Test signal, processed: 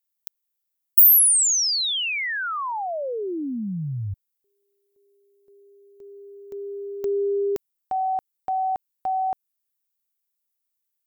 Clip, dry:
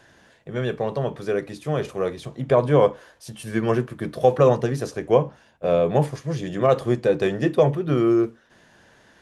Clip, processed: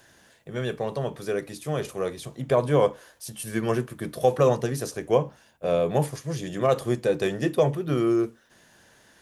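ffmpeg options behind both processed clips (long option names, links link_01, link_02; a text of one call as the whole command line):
ffmpeg -i in.wav -af "aemphasis=mode=production:type=50fm,volume=-3.5dB" out.wav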